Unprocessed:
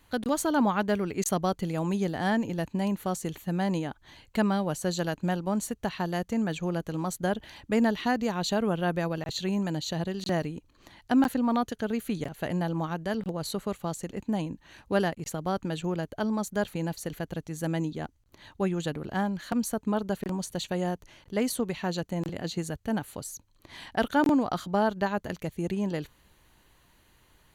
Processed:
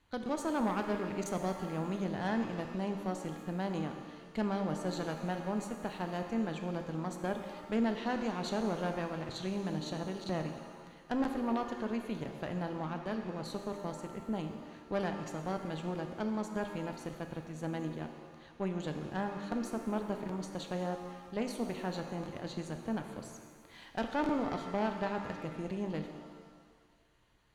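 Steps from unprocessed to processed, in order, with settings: distance through air 57 m; valve stage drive 21 dB, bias 0.7; pitch-shifted reverb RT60 1.6 s, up +7 st, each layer -8 dB, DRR 5.5 dB; trim -5 dB

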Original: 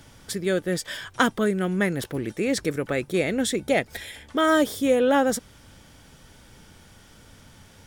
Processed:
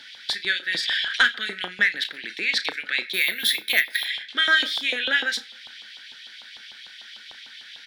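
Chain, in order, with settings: FFT filter 120 Hz 0 dB, 220 Hz +8 dB, 1.1 kHz -23 dB, 1.6 kHz +1 dB, 2.8 kHz +1 dB, 4 kHz +9 dB, 7 kHz -14 dB, 13 kHz -18 dB; 3.13–4.05 s: careless resampling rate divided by 3×, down none, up hold; on a send at -17 dB: reverberation RT60 0.55 s, pre-delay 5 ms; on the sum: LFO high-pass saw up 6.7 Hz 820–3400 Hz; doubling 33 ms -12 dB; in parallel at -3 dB: compression, threshold -41 dBFS, peak gain reduction 22.5 dB; on the sum: saturation -8.5 dBFS, distortion -25 dB; 0.69–1.23 s: decay stretcher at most 32 dB/s; trim +3.5 dB

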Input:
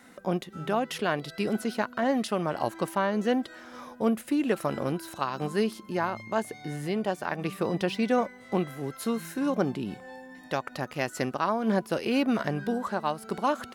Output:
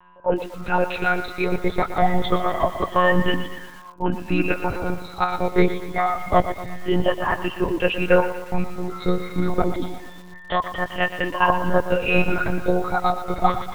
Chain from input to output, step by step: drifting ripple filter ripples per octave 1.3, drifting -0.26 Hz, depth 20 dB; dynamic bell 280 Hz, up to -3 dB, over -40 dBFS, Q 4.7; whistle 1 kHz -36 dBFS; spectral noise reduction 17 dB; monotone LPC vocoder at 8 kHz 180 Hz; bit-crushed delay 119 ms, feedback 55%, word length 7-bit, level -11.5 dB; trim +5 dB

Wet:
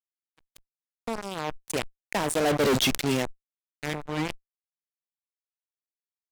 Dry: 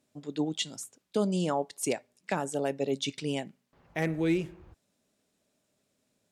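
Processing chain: Doppler pass-by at 2.69 s, 25 m/s, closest 1.8 m; fuzz box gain 53 dB, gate -51 dBFS; decay stretcher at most 78 dB/s; trim -7 dB

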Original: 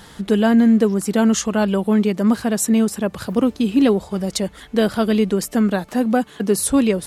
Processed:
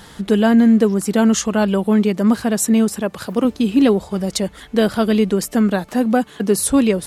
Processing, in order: 3.01–3.45 s: bass shelf 140 Hz -10.5 dB; trim +1.5 dB

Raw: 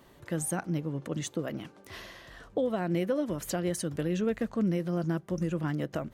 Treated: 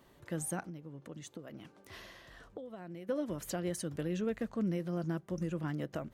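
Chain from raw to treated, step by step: 0.61–3.09 s: compression 6:1, threshold -38 dBFS, peak gain reduction 13 dB; trim -5.5 dB

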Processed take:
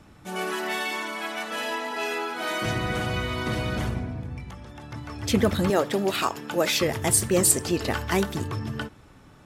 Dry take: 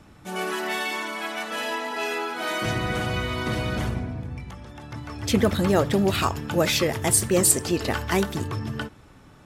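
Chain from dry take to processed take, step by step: 5.70–6.81 s: high-pass 260 Hz 12 dB/octave; trim -1 dB

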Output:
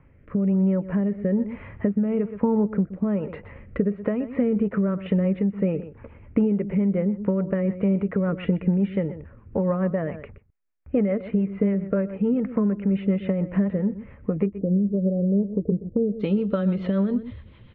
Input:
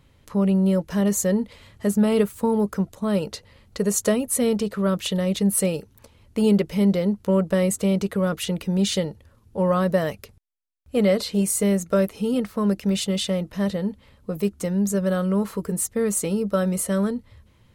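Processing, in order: steep low-pass 2.4 kHz 48 dB/octave, from 14.45 s 640 Hz, from 16.19 s 3.7 kHz; echo from a far wall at 21 m, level -17 dB; compression 6:1, threshold -33 dBFS, peak gain reduction 18 dB; rotary cabinet horn 1.1 Hz, later 7 Hz, at 4.28 s; level rider gain up to 5 dB; dynamic bell 230 Hz, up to +5 dB, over -43 dBFS, Q 0.7; trim +5 dB

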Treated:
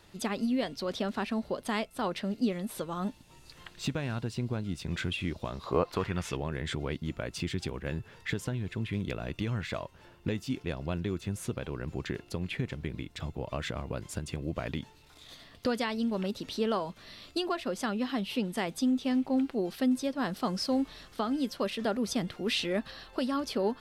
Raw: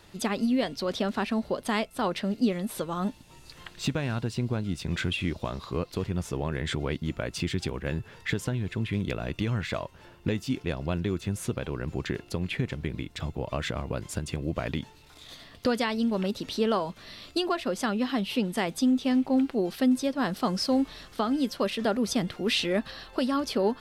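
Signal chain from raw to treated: 5.64–6.35 s: peaking EQ 560 Hz -> 2.8 kHz +13.5 dB 2.1 oct; trim -4 dB

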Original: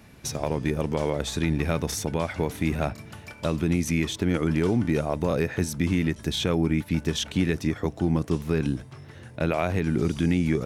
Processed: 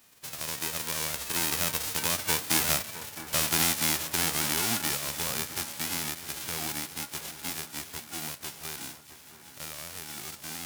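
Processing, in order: formants flattened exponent 0.1; Doppler pass-by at 2.80 s, 19 m/s, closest 21 m; echo whose repeats swap between lows and highs 661 ms, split 1.7 kHz, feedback 71%, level -12.5 dB

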